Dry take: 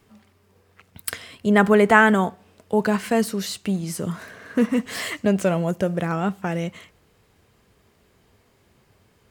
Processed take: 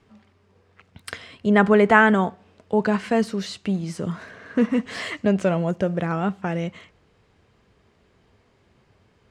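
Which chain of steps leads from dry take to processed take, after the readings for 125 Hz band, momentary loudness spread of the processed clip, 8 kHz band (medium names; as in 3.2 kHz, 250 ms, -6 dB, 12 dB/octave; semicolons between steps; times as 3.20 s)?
0.0 dB, 15 LU, -9.0 dB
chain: distance through air 90 m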